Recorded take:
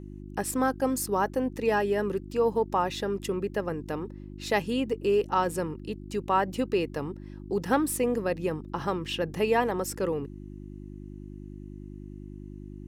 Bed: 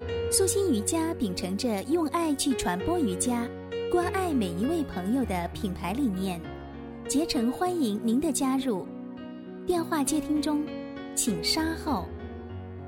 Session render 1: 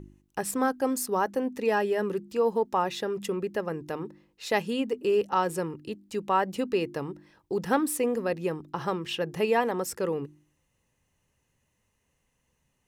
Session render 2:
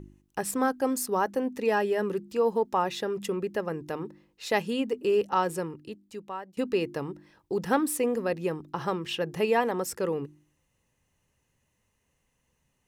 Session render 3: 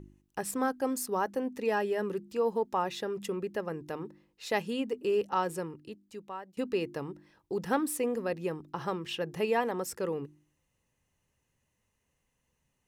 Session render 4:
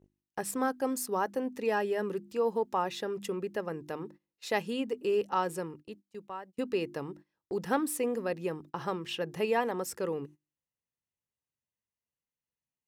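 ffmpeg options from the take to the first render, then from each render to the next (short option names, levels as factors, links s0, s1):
-af "bandreject=f=50:t=h:w=4,bandreject=f=100:t=h:w=4,bandreject=f=150:t=h:w=4,bandreject=f=200:t=h:w=4,bandreject=f=250:t=h:w=4,bandreject=f=300:t=h:w=4,bandreject=f=350:t=h:w=4"
-filter_complex "[0:a]asplit=2[s0][s1];[s0]atrim=end=6.57,asetpts=PTS-STARTPTS,afade=t=out:st=5.41:d=1.16:silence=0.0630957[s2];[s1]atrim=start=6.57,asetpts=PTS-STARTPTS,afade=t=in:d=0.004:c=hsin:silence=0.0630957[s3];[s2][s3]concat=n=2:v=0:a=1"
-af "volume=0.631"
-af "highpass=f=91:p=1,agate=range=0.1:threshold=0.00355:ratio=16:detection=peak"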